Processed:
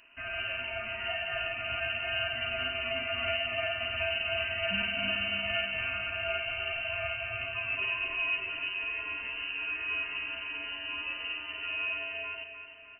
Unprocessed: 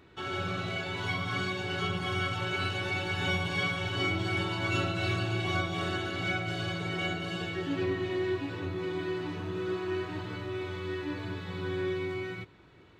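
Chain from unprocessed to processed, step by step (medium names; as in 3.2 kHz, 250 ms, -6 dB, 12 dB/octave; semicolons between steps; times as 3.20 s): frequency inversion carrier 2.9 kHz; feedback delay 304 ms, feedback 54%, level -9.5 dB; trim -2 dB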